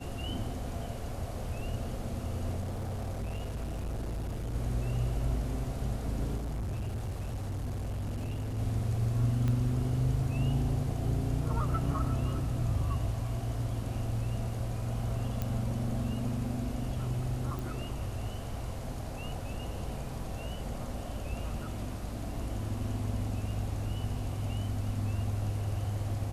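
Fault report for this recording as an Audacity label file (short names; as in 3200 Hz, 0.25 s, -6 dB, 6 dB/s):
2.600000	4.540000	clipped -32 dBFS
6.360000	8.590000	clipped -32 dBFS
9.480000	9.480000	pop -21 dBFS
15.420000	15.420000	pop -19 dBFS
17.590000	17.590000	pop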